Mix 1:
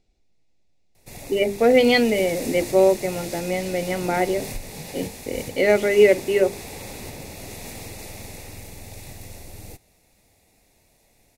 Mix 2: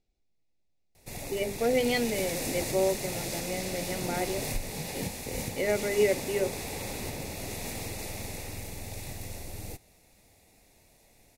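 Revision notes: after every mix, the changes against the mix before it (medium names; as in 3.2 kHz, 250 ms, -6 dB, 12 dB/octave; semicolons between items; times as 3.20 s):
speech -10.5 dB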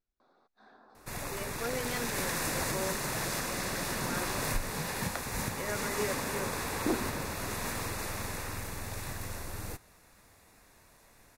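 speech -11.5 dB; second sound: unmuted; master: add high-order bell 1.3 kHz +13.5 dB 1 oct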